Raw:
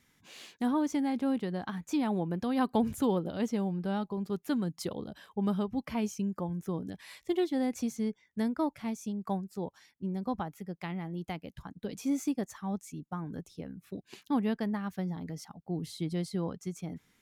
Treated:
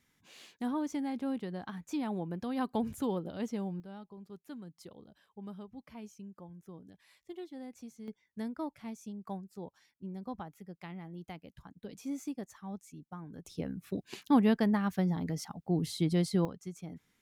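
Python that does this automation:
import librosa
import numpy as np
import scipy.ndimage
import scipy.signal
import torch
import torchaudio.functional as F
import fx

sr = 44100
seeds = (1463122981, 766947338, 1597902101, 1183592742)

y = fx.gain(x, sr, db=fx.steps((0.0, -5.0), (3.8, -15.0), (8.08, -7.5), (13.45, 4.5), (16.45, -5.0)))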